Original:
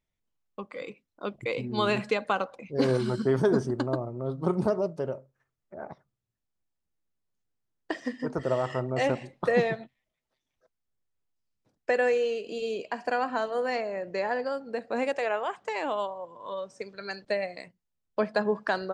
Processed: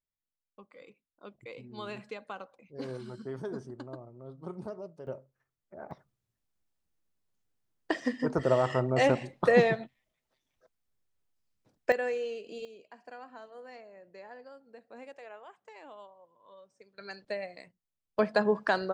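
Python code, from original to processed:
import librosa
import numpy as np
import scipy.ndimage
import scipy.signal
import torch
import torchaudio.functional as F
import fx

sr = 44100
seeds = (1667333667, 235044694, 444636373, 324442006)

y = fx.gain(x, sr, db=fx.steps((0.0, -14.5), (5.07, -5.0), (5.91, 2.0), (11.92, -7.5), (12.65, -19.0), (16.98, -7.0), (18.19, 0.5)))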